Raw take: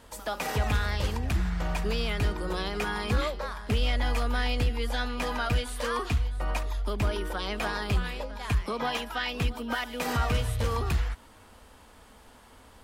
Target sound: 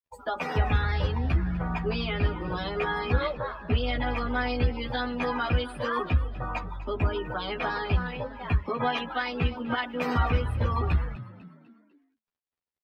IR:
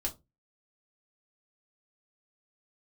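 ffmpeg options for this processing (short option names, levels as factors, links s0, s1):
-filter_complex "[0:a]acrusher=bits=6:mix=0:aa=0.5,asplit=2[s0][s1];[s1]adelay=12,volume=0.794[s2];[s0][s2]amix=inputs=2:normalize=0,afftdn=nr=29:nf=-36,equalizer=f=8600:w=0.96:g=-9,asplit=2[s3][s4];[s4]asplit=4[s5][s6][s7][s8];[s5]adelay=249,afreqshift=54,volume=0.141[s9];[s6]adelay=498,afreqshift=108,volume=0.061[s10];[s7]adelay=747,afreqshift=162,volume=0.026[s11];[s8]adelay=996,afreqshift=216,volume=0.0112[s12];[s9][s10][s11][s12]amix=inputs=4:normalize=0[s13];[s3][s13]amix=inputs=2:normalize=0"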